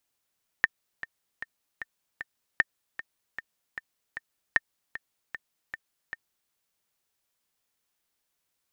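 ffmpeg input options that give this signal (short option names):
-f lavfi -i "aevalsrc='pow(10,(-7-15*gte(mod(t,5*60/153),60/153))/20)*sin(2*PI*1810*mod(t,60/153))*exp(-6.91*mod(t,60/153)/0.03)':d=5.88:s=44100"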